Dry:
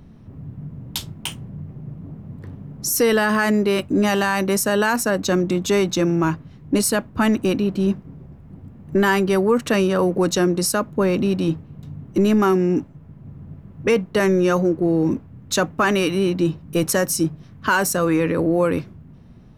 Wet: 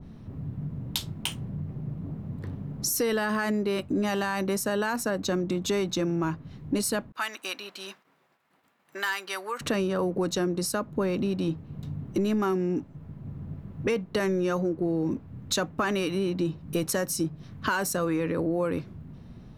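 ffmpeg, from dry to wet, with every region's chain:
-filter_complex "[0:a]asettb=1/sr,asplit=3[s0][s1][s2];[s0]atrim=end=7.124[s3];[s1]atrim=start=7.12:end=9.61,asetpts=PTS-STARTPTS,afade=t=in:d=0.004:c=qsin,afade=t=out:st=2.486:d=0.004:c=qsin,agate=range=0.0224:threshold=0.01:ratio=3:release=100:detection=peak,highpass=1300,volume=5.62,asoftclip=hard,volume=0.178[s4];[s2]atrim=start=9.606[s5];[s3][s4]acrossfade=d=0.004:c1=hsin:c2=qsin[s6];[s6][s5]acrossfade=d=0.004:c1=qsin:c2=hsin,equalizer=f=4000:t=o:w=0.43:g=3.5,acompressor=threshold=0.0398:ratio=2.5,adynamicequalizer=threshold=0.01:dfrequency=1800:dqfactor=0.7:tfrequency=1800:tqfactor=0.7:attack=5:release=100:ratio=0.375:range=1.5:mode=cutabove:tftype=highshelf"

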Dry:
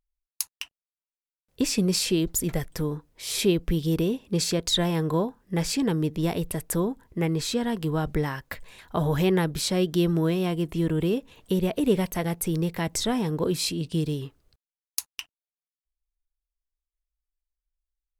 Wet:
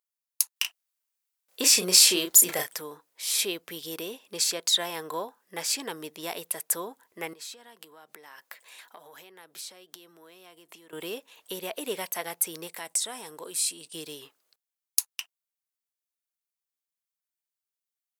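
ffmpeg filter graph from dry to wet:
-filter_complex "[0:a]asettb=1/sr,asplit=3[s0][s1][s2];[s0]atrim=end=0.564[s3];[s1]atrim=start=0.56:end=2.76,asetpts=PTS-STARTPTS,afade=t=in:d=0.004:c=qsin,afade=t=out:st=2.196:d=0.004:c=qsin,acontrast=75,asplit=2[s4][s5];[s5]adelay=33,volume=0.531[s6];[s4][s6]amix=inputs=2:normalize=0,atrim=end_sample=97020[s7];[s2]atrim=start=2.756[s8];[s3][s7]acrossfade=d=0.004:c1=hsin:c2=qsin[s9];[s9][s8]acrossfade=d=0.004:c1=qsin:c2=hsin,asettb=1/sr,asplit=3[s10][s11][s12];[s10]atrim=end=7.334[s13];[s11]atrim=start=7.33:end=10.93,asetpts=PTS-STARTPTS,afade=t=in:d=0.004:c=qsin,afade=t=out:st=3.596:d=0.004:c=qsin,highpass=f=160:w=0.5412,highpass=f=160:w=1.3066,acompressor=threshold=0.0112:ratio=8:attack=3.2:release=140:knee=1:detection=peak[s14];[s12]atrim=start=10.926[s15];[s13][s14]acrossfade=d=0.004:c1=hsin:c2=qsin[s16];[s16][s15]acrossfade=d=0.004:c1=qsin:c2=hsin,asettb=1/sr,asplit=3[s17][s18][s19];[s17]atrim=end=12.674[s20];[s18]atrim=start=12.67:end=13.95,asetpts=PTS-STARTPTS,afade=t=in:d=0.004:c=qsin,afade=t=out:st=1.276:d=0.004:c=qsin,agate=range=0.0224:threshold=0.0112:ratio=3:release=100:detection=peak,equalizer=f=8800:w=1.8:g=11.5,acompressor=threshold=0.0251:ratio=2:attack=3.2:release=140:knee=1:detection=peak[s21];[s19]atrim=start=13.946[s22];[s20][s21]acrossfade=d=0.004:c1=hsin:c2=qsin[s23];[s23][s22]acrossfade=d=0.004:c1=qsin:c2=hsin,highpass=680,highshelf=f=6300:g=8,volume=0.891"

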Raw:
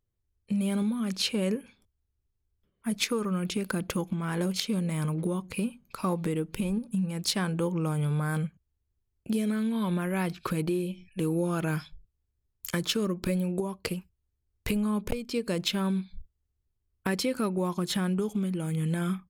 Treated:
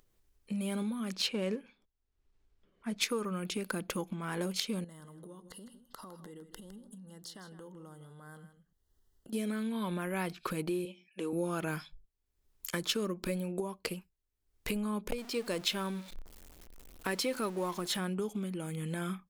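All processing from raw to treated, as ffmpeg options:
-filter_complex "[0:a]asettb=1/sr,asplit=3[s0][s1][s2];[s0]atrim=end=1.144[s3];[s1]atrim=start=1.14:end=3.01,asetpts=PTS-STARTPTS,afade=t=in:d=0.004:c=qsin,afade=t=out:st=1.866:d=0.004:c=qsin,acrusher=bits=7:mode=log:mix=0:aa=0.000001,adynamicsmooth=sensitivity=5:basefreq=5200[s4];[s2]atrim=start=3.006[s5];[s3][s4]acrossfade=d=0.004:c1=hsin:c2=qsin[s6];[s6][s5]acrossfade=d=0.004:c1=qsin:c2=hsin,asettb=1/sr,asplit=3[s7][s8][s9];[s7]atrim=end=4.844[s10];[s8]atrim=start=4.84:end=9.33,asetpts=PTS-STARTPTS,afade=t=in:d=0.004:c=qsin,afade=t=out:st=4.486:d=0.004:c=qsin,acompressor=threshold=0.01:ratio=10:attack=3.2:release=140:knee=1:detection=peak,asuperstop=centerf=2400:order=12:qfactor=3.4,aecho=1:1:158:0.251,atrim=end_sample=198009[s11];[s9]atrim=start=9.326[s12];[s10][s11]acrossfade=d=0.004:c1=hsin:c2=qsin[s13];[s13][s12]acrossfade=d=0.004:c1=qsin:c2=hsin,asettb=1/sr,asplit=3[s14][s15][s16];[s14]atrim=end=10.854[s17];[s15]atrim=start=10.85:end=11.33,asetpts=PTS-STARTPTS,afade=t=in:d=0.004:c=qsin,afade=t=out:st=0.476:d=0.004:c=qsin,highpass=290,lowpass=7400,equalizer=f=4400:w=8:g=-4.5[s18];[s16]atrim=start=11.326[s19];[s17][s18]acrossfade=d=0.004:c1=hsin:c2=qsin[s20];[s20][s19]acrossfade=d=0.004:c1=qsin:c2=hsin,asettb=1/sr,asplit=3[s21][s22][s23];[s21]atrim=end=15.184[s24];[s22]atrim=start=15.18:end=17.99,asetpts=PTS-STARTPTS,afade=t=in:d=0.004:c=qsin,afade=t=out:st=2.806:d=0.004:c=qsin,aeval=exprs='val(0)+0.5*0.0106*sgn(val(0))':c=same,equalizer=f=160:w=0.91:g=-4[s25];[s23]atrim=start=17.986[s26];[s24][s25]acrossfade=d=0.004:c1=hsin:c2=qsin[s27];[s27][s26]acrossfade=d=0.004:c1=qsin:c2=hsin,equalizer=f=88:w=0.86:g=-14,acompressor=mode=upward:threshold=0.00224:ratio=2.5,volume=0.708"

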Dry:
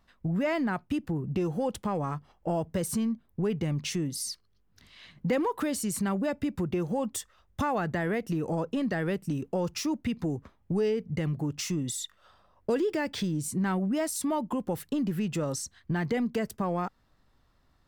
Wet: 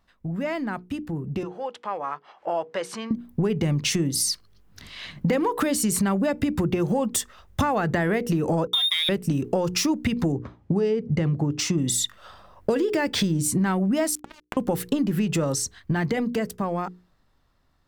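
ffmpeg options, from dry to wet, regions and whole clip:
-filter_complex "[0:a]asettb=1/sr,asplit=3[s0][s1][s2];[s0]atrim=end=1.434[s3];[s1]atrim=start=1.43:end=3.11,asetpts=PTS-STARTPTS,afade=t=in:d=0.004:c=qsin,afade=t=out:st=1.676:d=0.004:c=qsin,highpass=650,lowpass=3400,acompressor=mode=upward:threshold=0.00501:ratio=2.5:attack=3.2:release=140:knee=2.83:detection=peak[s4];[s2]atrim=start=3.106[s5];[s3][s4]acrossfade=d=0.004:c1=hsin:c2=qsin[s6];[s6][s5]acrossfade=d=0.004:c1=qsin:c2=hsin,asettb=1/sr,asplit=3[s7][s8][s9];[s7]atrim=end=8.674[s10];[s8]atrim=start=8.67:end=9.09,asetpts=PTS-STARTPTS,afade=t=in:d=0.004:c=qsin,afade=t=out:st=0.416:d=0.004:c=qsin,highpass=f=67:w=0.5412,highpass=f=67:w=1.3066,lowpass=f=3300:t=q:w=0.5098,lowpass=f=3300:t=q:w=0.6013,lowpass=f=3300:t=q:w=0.9,lowpass=f=3300:t=q:w=2.563,afreqshift=-3900,aeval=exprs='sgn(val(0))*max(abs(val(0))-0.00668,0)':c=same[s11];[s9]atrim=start=9.086[s12];[s10][s11]acrossfade=d=0.004:c1=hsin:c2=qsin[s13];[s13][s12]acrossfade=d=0.004:c1=qsin:c2=hsin,asettb=1/sr,asplit=3[s14][s15][s16];[s14]atrim=end=10.324[s17];[s15]atrim=start=10.32:end=11.78,asetpts=PTS-STARTPTS,afade=t=in:d=0.004:c=qsin,afade=t=out:st=1.456:d=0.004:c=qsin,equalizer=f=2200:t=o:w=1.8:g=-3.5,adynamicsmooth=sensitivity=5:basefreq=5000,highpass=54[s18];[s16]atrim=start=11.776[s19];[s17][s18]acrossfade=d=0.004:c1=hsin:c2=qsin[s20];[s20][s19]acrossfade=d=0.004:c1=qsin:c2=hsin,asettb=1/sr,asplit=3[s21][s22][s23];[s21]atrim=end=14.154[s24];[s22]atrim=start=14.15:end=14.57,asetpts=PTS-STARTPTS,afade=t=in:d=0.004:c=qsin,afade=t=out:st=0.416:d=0.004:c=qsin,equalizer=f=11000:t=o:w=0.58:g=-10,acompressor=threshold=0.0355:ratio=16:attack=3.2:release=140:knee=1:detection=peak,acrusher=bits=3:mix=0:aa=0.5[s25];[s23]atrim=start=14.566[s26];[s24][s25]acrossfade=d=0.004:c1=hsin:c2=qsin[s27];[s27][s26]acrossfade=d=0.004:c1=qsin:c2=hsin,dynaudnorm=f=390:g=13:m=4.73,bandreject=f=60:t=h:w=6,bandreject=f=120:t=h:w=6,bandreject=f=180:t=h:w=6,bandreject=f=240:t=h:w=6,bandreject=f=300:t=h:w=6,bandreject=f=360:t=h:w=6,bandreject=f=420:t=h:w=6,bandreject=f=480:t=h:w=6,acompressor=threshold=0.1:ratio=6"

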